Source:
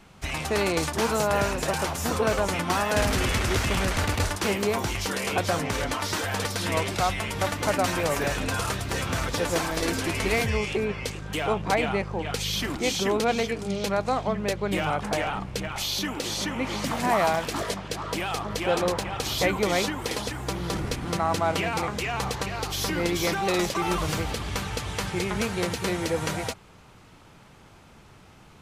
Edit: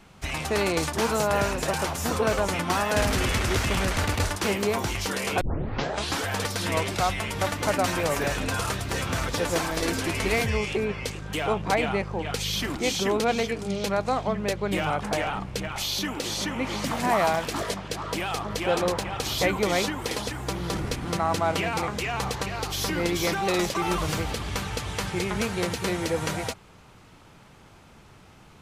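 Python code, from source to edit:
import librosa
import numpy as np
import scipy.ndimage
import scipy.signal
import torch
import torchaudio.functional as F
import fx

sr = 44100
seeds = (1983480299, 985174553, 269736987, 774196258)

y = fx.edit(x, sr, fx.tape_start(start_s=5.41, length_s=0.84), tone=tone)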